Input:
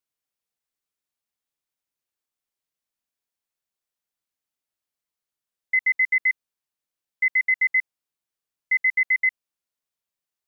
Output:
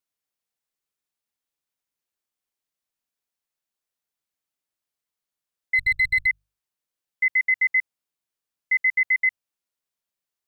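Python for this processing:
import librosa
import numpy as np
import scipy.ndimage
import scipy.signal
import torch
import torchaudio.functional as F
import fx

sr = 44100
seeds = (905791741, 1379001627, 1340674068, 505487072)

y = fx.lower_of_two(x, sr, delay_ms=4.4, at=(5.74, 6.25), fade=0.02)
y = fx.hum_notches(y, sr, base_hz=50, count=3)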